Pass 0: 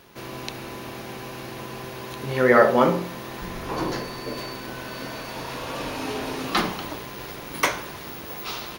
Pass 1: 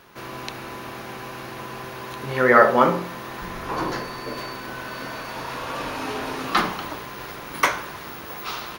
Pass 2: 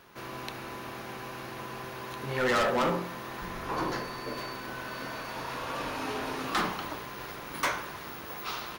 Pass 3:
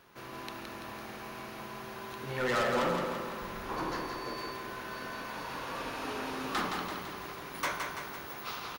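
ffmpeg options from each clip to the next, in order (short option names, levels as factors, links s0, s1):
-af "equalizer=f=1300:t=o:w=1.4:g=6.5,volume=0.841"
-af "asoftclip=type=hard:threshold=0.119,volume=0.562"
-af "aecho=1:1:168|336|504|672|840|1008|1176|1344:0.562|0.321|0.183|0.104|0.0594|0.0338|0.0193|0.011,volume=0.596"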